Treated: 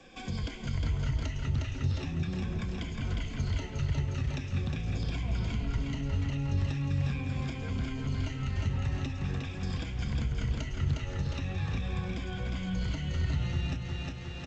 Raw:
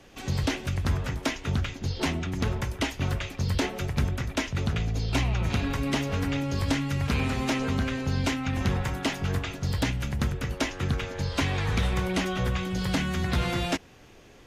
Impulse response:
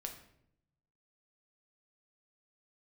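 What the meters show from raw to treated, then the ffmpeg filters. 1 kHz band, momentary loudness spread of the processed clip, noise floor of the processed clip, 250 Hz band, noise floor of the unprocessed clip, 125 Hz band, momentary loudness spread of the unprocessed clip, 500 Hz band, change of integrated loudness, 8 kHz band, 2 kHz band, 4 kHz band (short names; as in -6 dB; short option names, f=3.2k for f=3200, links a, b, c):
-11.5 dB, 4 LU, -40 dBFS, -7.0 dB, -51 dBFS, -2.5 dB, 3 LU, -10.5 dB, -5.0 dB, -12.5 dB, -10.0 dB, -9.5 dB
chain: -filter_complex "[0:a]afftfilt=real='re*pow(10,12/40*sin(2*PI*(1.8*log(max(b,1)*sr/1024/100)/log(2)-(-0.42)*(pts-256)/sr)))':imag='im*pow(10,12/40*sin(2*PI*(1.8*log(max(b,1)*sr/1024/100)/log(2)-(-0.42)*(pts-256)/sr)))':win_size=1024:overlap=0.75,flanger=delay=3.8:depth=4.4:regen=70:speed=0.33:shape=sinusoidal,equalizer=f=2.7k:t=o:w=0.77:g=3.5,acompressor=threshold=-31dB:ratio=6,aecho=1:1:358|716|1074|1432|1790|2148|2506:0.562|0.309|0.17|0.0936|0.0515|0.0283|0.0156,acrossover=split=190[a][b];[b]acompressor=threshold=-41dB:ratio=6[c];[a][c]amix=inputs=2:normalize=0,lowshelf=f=220:g=6" -ar 16000 -c:a g722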